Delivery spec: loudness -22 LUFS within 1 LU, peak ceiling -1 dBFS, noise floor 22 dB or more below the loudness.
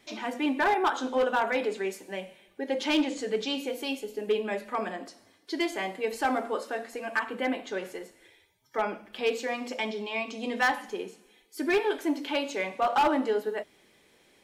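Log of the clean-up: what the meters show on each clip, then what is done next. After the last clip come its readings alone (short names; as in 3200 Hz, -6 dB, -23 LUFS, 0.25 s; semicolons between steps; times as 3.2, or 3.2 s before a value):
clipped 0.6%; flat tops at -19.0 dBFS; loudness -30.0 LUFS; peak -19.0 dBFS; loudness target -22.0 LUFS
-> clip repair -19 dBFS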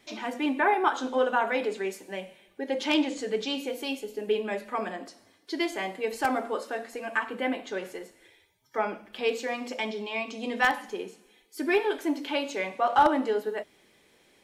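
clipped 0.0%; loudness -29.0 LUFS; peak -10.0 dBFS; loudness target -22.0 LUFS
-> gain +7 dB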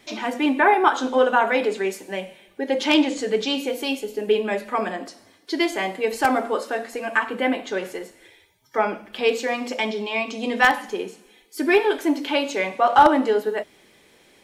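loudness -22.0 LUFS; peak -3.0 dBFS; noise floor -56 dBFS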